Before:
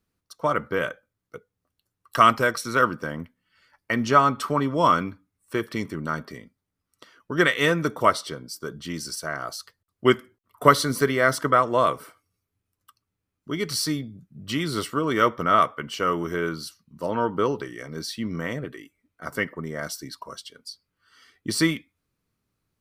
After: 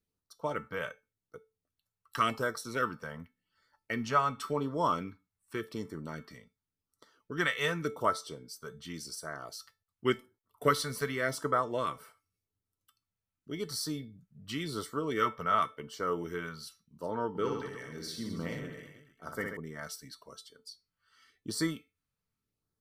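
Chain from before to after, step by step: LFO notch sine 0.89 Hz 300–2700 Hz; resonator 440 Hz, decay 0.25 s, harmonics all, mix 70%; 17.29–19.57 reverse bouncing-ball echo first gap 60 ms, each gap 1.2×, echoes 5

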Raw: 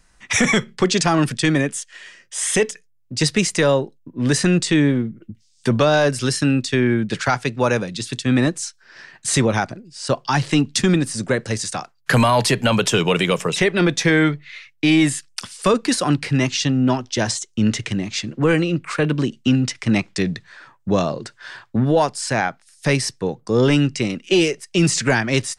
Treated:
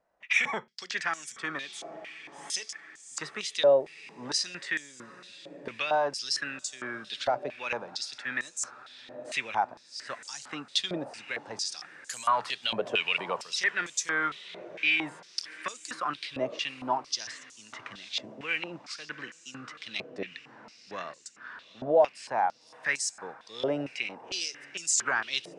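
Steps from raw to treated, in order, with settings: diffused feedback echo 0.802 s, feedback 56%, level -16 dB; stepped band-pass 4.4 Hz 620–7100 Hz

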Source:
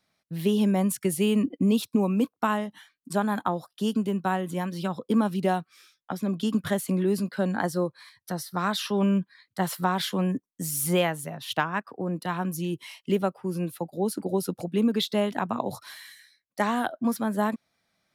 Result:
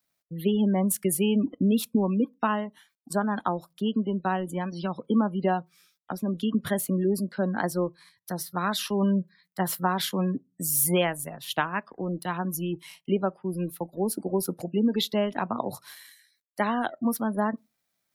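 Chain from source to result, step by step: G.711 law mismatch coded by A; spectral gate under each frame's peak -30 dB strong; high shelf 10000 Hz +11.5 dB; on a send: reverb RT60 0.20 s, pre-delay 3 ms, DRR 19.5 dB

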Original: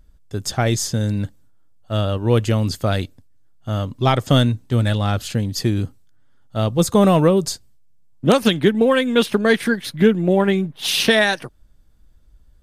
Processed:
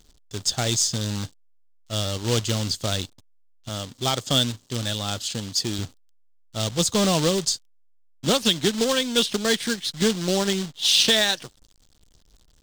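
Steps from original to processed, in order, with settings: 3.69–5.79 low shelf 92 Hz -11.5 dB; companded quantiser 4-bit; band shelf 5000 Hz +11 dB; gain -8 dB

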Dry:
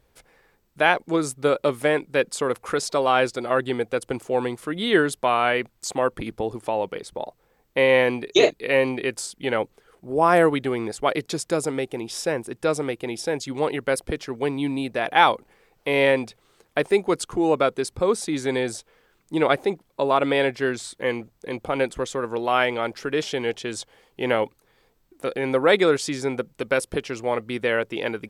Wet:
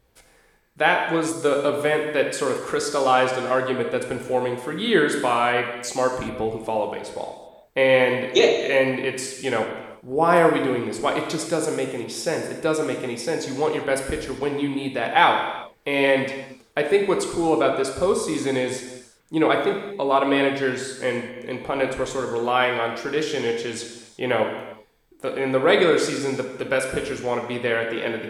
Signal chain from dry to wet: non-linear reverb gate 0.41 s falling, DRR 2 dB; gain -1 dB

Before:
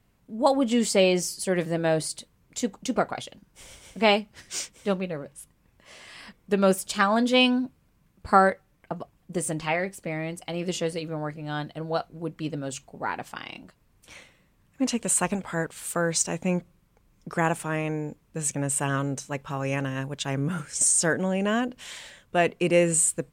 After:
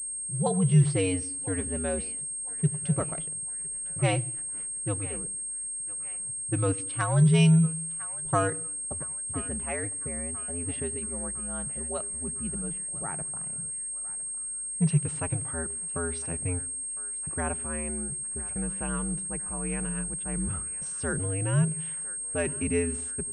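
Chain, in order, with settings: notch 940 Hz, Q 23; frequency shift -89 Hz; bell 150 Hz +14 dB 0.63 oct; added noise pink -56 dBFS; low-pass opened by the level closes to 440 Hz, open at -18 dBFS; narrowing echo 1.006 s, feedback 61%, band-pass 1600 Hz, level -15 dB; on a send at -23.5 dB: reverb RT60 0.70 s, pre-delay 78 ms; on the sum: pulse-width modulation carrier 8500 Hz; gain -8 dB

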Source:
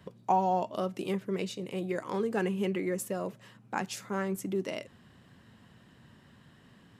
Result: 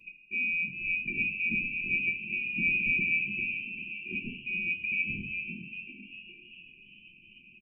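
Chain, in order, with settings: inverted band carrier 2900 Hz; frequency-shifting echo 0.364 s, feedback 51%, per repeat +99 Hz, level -8 dB; on a send at -4.5 dB: reverb RT60 0.45 s, pre-delay 5 ms; on the sum: speed mistake 48 kHz file played as 44.1 kHz; brick-wall FIR band-stop 410–2300 Hz; small resonant body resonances 210/470/990 Hz, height 16 dB, ringing for 40 ms

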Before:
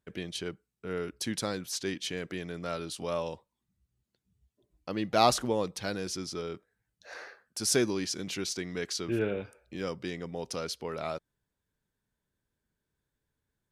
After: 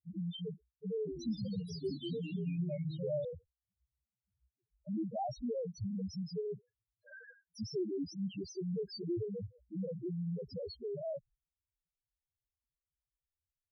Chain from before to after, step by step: gate -57 dBFS, range -18 dB; low shelf 190 Hz +11 dB; compressor 6:1, threshold -30 dBFS, peak gain reduction 12.5 dB; loudest bins only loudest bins 1; 0.98–3.25 echoes that change speed 91 ms, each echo -2 st, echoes 3, each echo -6 dB; gain +5.5 dB

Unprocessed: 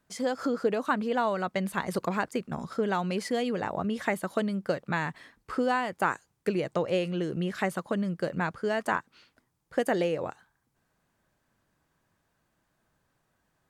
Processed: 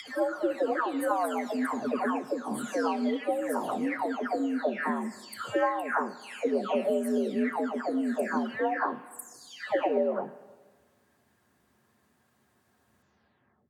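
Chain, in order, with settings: spectral delay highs early, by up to 0.668 s; frequency shift +65 Hz; in parallel at +1 dB: compressor, threshold -40 dBFS, peak gain reduction 16.5 dB; on the sum: dynamic EQ 3600 Hz, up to -7 dB, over -48 dBFS, Q 0.71; Schroeder reverb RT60 1.5 s, combs from 29 ms, DRR 15 dB

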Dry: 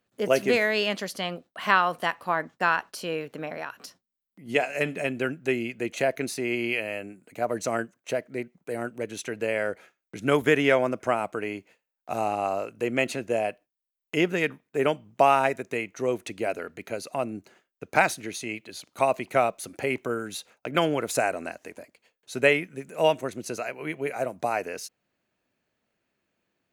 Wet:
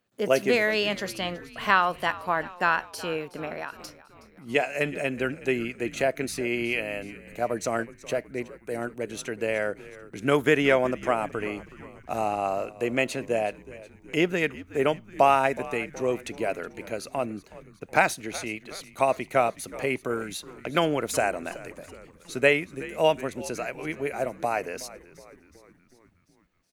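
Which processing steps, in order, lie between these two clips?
frequency-shifting echo 0.37 s, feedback 57%, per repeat -86 Hz, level -18 dB

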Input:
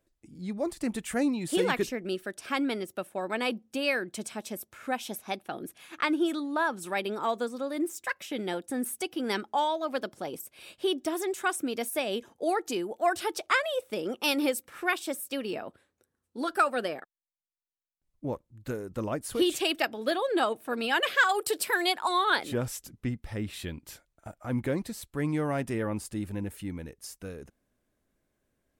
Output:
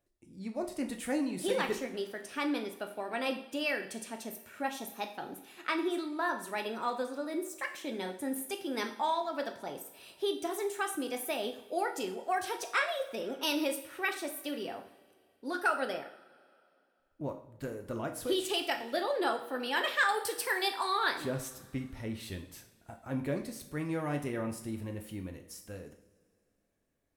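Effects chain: two-slope reverb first 0.55 s, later 2.7 s, from -20 dB, DRR 4 dB; varispeed +6%; gain -5.5 dB

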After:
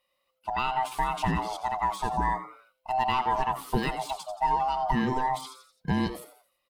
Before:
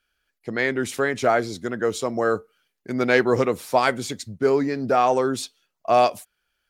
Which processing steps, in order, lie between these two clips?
band-swap scrambler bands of 500 Hz; compressor 5:1, threshold -21 dBFS, peak gain reduction 8 dB; fifteen-band EQ 100 Hz -9 dB, 1600 Hz -8 dB, 6300 Hz -8 dB; frequency-shifting echo 86 ms, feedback 42%, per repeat +130 Hz, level -13.5 dB; de-esser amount 85%

